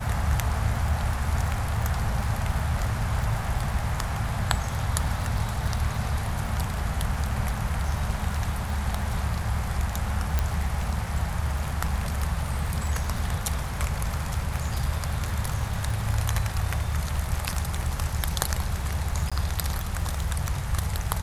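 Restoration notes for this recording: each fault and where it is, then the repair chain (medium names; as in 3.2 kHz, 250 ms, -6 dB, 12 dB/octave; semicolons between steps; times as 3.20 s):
crackle 31 per s -30 dBFS
10.39 s: pop
19.30–19.32 s: dropout 16 ms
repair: de-click; interpolate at 19.30 s, 16 ms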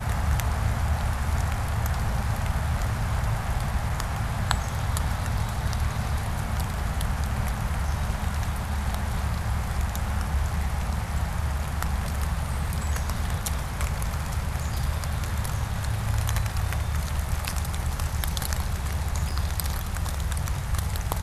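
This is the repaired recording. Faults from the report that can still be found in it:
nothing left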